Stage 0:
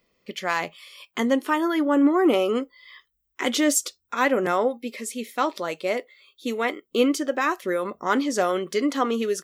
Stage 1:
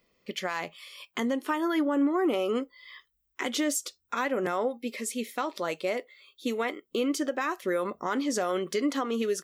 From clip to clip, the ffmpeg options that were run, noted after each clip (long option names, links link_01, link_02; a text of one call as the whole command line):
ffmpeg -i in.wav -af "alimiter=limit=-18dB:level=0:latency=1:release=244,volume=-1dB" out.wav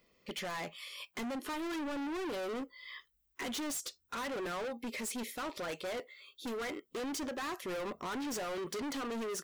ffmpeg -i in.wav -af "asoftclip=type=hard:threshold=-36.5dB" out.wav